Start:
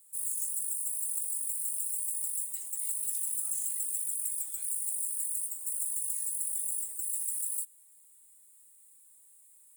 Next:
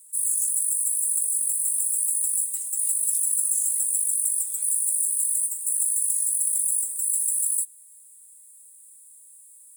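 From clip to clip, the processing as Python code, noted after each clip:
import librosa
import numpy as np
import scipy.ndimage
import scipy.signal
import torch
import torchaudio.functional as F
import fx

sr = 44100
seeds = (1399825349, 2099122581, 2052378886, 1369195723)

y = fx.peak_eq(x, sr, hz=9700.0, db=11.5, octaves=1.4)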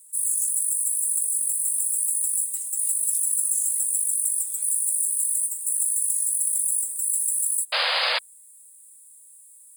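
y = fx.spec_paint(x, sr, seeds[0], shape='noise', start_s=7.72, length_s=0.47, low_hz=470.0, high_hz=5000.0, level_db=-23.0)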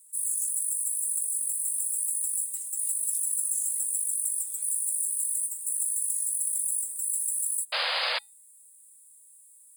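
y = fx.comb_fb(x, sr, f0_hz=280.0, decay_s=0.27, harmonics='odd', damping=0.0, mix_pct=30)
y = y * 10.0 ** (-2.0 / 20.0)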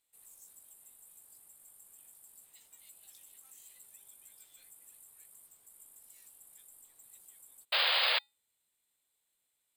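y = fx.ladder_lowpass(x, sr, hz=4400.0, resonance_pct=40)
y = np.repeat(y[::2], 2)[:len(y)]
y = y * 10.0 ** (5.0 / 20.0)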